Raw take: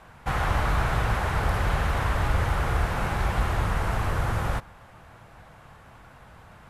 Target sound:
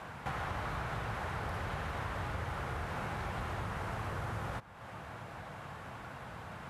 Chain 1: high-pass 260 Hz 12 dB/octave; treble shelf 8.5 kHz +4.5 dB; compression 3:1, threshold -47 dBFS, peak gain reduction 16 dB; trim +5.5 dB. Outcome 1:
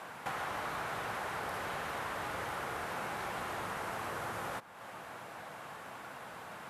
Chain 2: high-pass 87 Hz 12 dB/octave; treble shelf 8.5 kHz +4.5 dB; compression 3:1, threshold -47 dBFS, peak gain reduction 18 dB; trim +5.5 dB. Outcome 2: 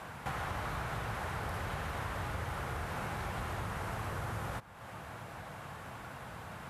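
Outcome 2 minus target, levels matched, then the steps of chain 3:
8 kHz band +4.5 dB
high-pass 87 Hz 12 dB/octave; treble shelf 8.5 kHz -6.5 dB; compression 3:1, threshold -47 dBFS, peak gain reduction 17.5 dB; trim +5.5 dB

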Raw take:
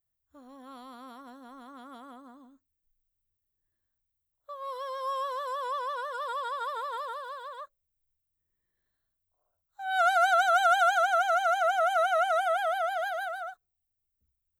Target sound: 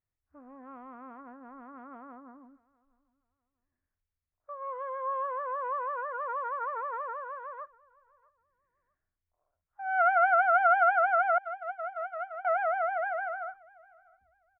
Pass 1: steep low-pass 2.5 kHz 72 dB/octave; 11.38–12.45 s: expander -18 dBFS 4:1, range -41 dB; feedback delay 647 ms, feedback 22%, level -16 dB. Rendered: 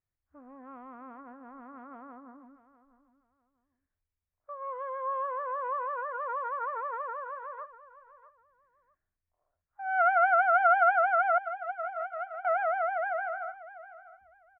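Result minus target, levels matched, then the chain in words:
echo-to-direct +9.5 dB
steep low-pass 2.5 kHz 72 dB/octave; 11.38–12.45 s: expander -18 dBFS 4:1, range -41 dB; feedback delay 647 ms, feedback 22%, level -25.5 dB

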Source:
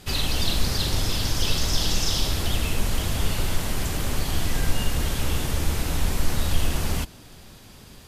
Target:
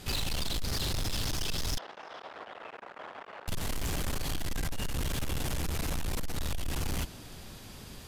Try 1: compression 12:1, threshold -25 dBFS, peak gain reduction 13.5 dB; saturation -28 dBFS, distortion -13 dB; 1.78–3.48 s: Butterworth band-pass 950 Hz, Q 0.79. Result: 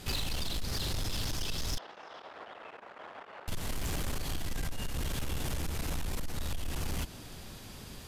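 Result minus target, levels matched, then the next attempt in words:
compression: peak gain reduction +5.5 dB
compression 12:1, threshold -19 dBFS, peak gain reduction 8 dB; saturation -28 dBFS, distortion -9 dB; 1.78–3.48 s: Butterworth band-pass 950 Hz, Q 0.79

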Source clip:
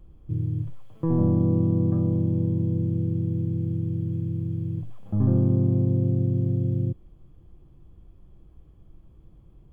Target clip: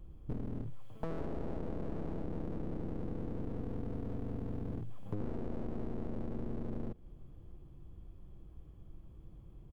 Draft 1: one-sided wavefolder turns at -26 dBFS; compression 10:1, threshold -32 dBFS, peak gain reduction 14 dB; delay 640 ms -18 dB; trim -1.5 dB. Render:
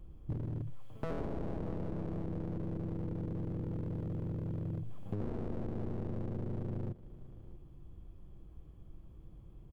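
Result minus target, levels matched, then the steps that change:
one-sided wavefolder: distortion -11 dB; echo-to-direct +8 dB
change: one-sided wavefolder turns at -33.5 dBFS; change: delay 640 ms -26 dB

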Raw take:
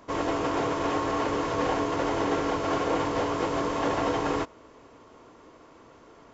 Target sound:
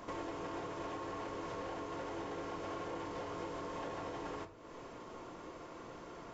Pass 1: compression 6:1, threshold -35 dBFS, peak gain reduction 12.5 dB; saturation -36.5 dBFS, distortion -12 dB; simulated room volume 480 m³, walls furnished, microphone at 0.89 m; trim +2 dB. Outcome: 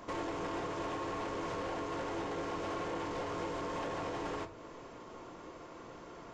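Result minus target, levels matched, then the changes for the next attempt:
compression: peak gain reduction -6.5 dB
change: compression 6:1, threshold -43 dBFS, peak gain reduction 19 dB

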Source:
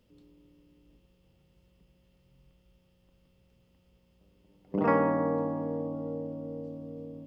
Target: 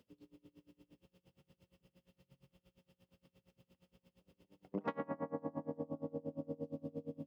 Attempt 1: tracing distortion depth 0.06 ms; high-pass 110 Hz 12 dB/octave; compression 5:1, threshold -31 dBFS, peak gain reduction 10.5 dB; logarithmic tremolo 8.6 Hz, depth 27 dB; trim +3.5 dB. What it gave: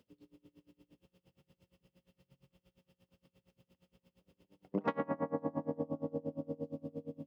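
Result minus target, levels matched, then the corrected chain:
compression: peak gain reduction -5 dB
tracing distortion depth 0.06 ms; high-pass 110 Hz 12 dB/octave; compression 5:1, threshold -37.5 dBFS, peak gain reduction 16 dB; logarithmic tremolo 8.6 Hz, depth 27 dB; trim +3.5 dB

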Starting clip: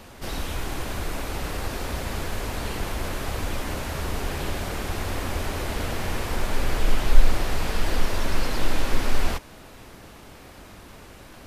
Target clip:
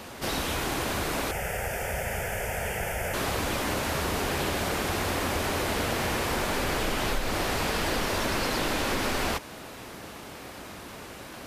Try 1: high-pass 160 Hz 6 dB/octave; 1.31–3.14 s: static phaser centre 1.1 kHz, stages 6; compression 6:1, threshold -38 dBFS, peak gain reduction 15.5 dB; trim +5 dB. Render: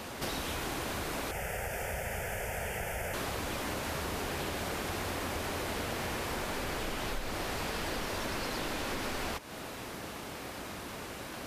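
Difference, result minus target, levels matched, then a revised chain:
compression: peak gain reduction +8 dB
high-pass 160 Hz 6 dB/octave; 1.31–3.14 s: static phaser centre 1.1 kHz, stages 6; compression 6:1, threshold -28.5 dBFS, peak gain reduction 7.5 dB; trim +5 dB

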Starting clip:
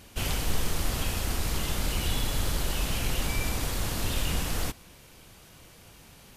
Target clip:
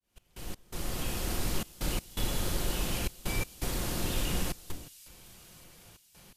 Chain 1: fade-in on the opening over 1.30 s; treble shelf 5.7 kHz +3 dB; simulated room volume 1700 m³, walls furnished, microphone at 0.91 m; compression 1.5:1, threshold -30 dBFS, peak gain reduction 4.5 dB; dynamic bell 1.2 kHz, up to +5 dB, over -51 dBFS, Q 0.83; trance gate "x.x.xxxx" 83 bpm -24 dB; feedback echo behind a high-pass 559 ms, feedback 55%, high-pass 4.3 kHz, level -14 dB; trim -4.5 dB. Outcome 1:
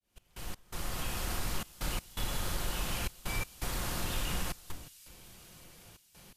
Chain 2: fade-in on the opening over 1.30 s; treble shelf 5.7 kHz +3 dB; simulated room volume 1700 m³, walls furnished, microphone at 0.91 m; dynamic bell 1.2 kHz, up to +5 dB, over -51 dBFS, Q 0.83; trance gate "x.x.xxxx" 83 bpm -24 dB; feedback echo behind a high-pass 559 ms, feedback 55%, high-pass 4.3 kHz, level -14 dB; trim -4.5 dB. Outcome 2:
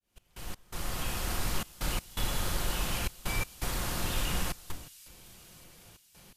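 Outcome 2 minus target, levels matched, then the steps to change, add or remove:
250 Hz band -3.5 dB
change: dynamic bell 340 Hz, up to +5 dB, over -51 dBFS, Q 0.83

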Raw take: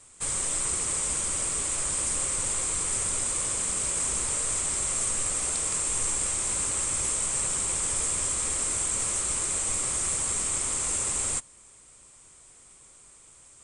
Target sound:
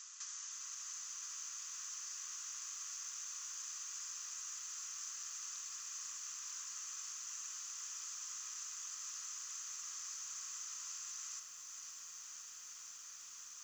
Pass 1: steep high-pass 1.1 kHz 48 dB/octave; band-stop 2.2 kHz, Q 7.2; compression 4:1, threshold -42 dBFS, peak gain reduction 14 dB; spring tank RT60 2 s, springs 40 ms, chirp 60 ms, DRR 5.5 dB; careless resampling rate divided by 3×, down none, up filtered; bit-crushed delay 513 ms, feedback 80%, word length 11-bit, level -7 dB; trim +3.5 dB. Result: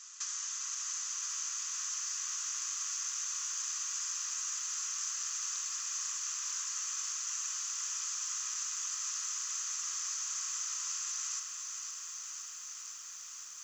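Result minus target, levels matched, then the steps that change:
compression: peak gain reduction -8.5 dB
change: compression 4:1, threshold -53.5 dBFS, peak gain reduction 23 dB

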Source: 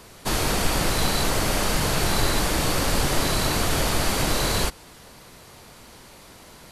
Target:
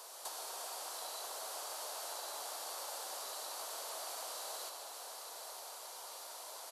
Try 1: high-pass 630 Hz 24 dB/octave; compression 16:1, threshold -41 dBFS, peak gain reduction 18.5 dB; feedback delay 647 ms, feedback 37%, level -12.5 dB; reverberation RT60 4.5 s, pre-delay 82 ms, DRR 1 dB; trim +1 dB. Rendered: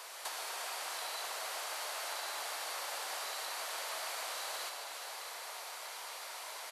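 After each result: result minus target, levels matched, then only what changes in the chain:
2 kHz band +7.5 dB; echo 259 ms early
add after compression: peaking EQ 2.1 kHz -14 dB 1.3 oct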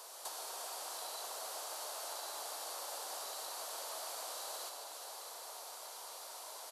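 echo 259 ms early
change: feedback delay 906 ms, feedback 37%, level -12.5 dB

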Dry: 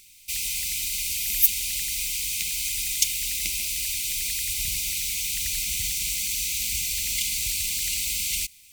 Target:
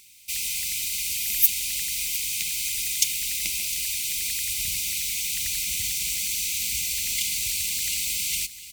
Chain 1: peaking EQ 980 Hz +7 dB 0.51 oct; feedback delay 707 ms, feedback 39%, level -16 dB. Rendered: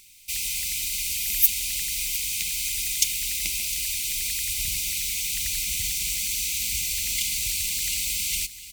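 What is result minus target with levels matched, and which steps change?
125 Hz band +4.0 dB
add first: high-pass 89 Hz 6 dB/octave

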